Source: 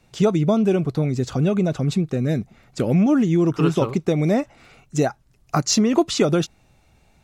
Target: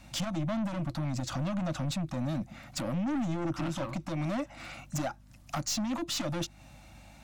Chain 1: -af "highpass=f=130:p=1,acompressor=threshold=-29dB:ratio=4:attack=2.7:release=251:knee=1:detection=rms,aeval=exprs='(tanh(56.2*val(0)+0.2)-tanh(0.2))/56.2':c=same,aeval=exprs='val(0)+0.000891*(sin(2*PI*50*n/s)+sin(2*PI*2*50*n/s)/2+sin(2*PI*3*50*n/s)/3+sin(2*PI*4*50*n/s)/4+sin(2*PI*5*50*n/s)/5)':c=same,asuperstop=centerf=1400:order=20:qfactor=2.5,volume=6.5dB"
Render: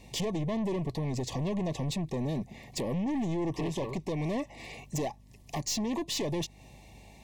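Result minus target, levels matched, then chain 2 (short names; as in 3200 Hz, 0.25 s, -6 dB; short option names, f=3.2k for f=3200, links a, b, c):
500 Hz band +3.5 dB
-af "highpass=f=130:p=1,acompressor=threshold=-29dB:ratio=4:attack=2.7:release=251:knee=1:detection=rms,aeval=exprs='(tanh(56.2*val(0)+0.2)-tanh(0.2))/56.2':c=same,aeval=exprs='val(0)+0.000891*(sin(2*PI*50*n/s)+sin(2*PI*2*50*n/s)/2+sin(2*PI*3*50*n/s)/3+sin(2*PI*4*50*n/s)/4+sin(2*PI*5*50*n/s)/5)':c=same,asuperstop=centerf=420:order=20:qfactor=2.5,volume=6.5dB"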